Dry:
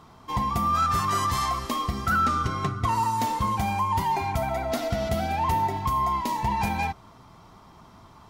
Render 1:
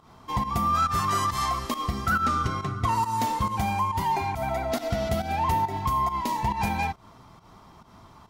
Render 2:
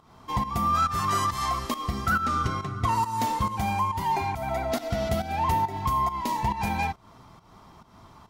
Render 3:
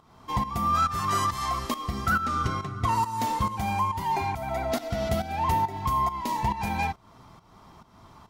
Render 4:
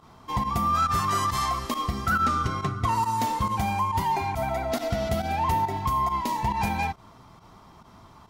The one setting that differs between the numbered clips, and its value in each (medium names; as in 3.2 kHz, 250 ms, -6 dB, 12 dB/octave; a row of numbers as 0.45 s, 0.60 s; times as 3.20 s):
volume shaper, release: 138 ms, 254 ms, 375 ms, 65 ms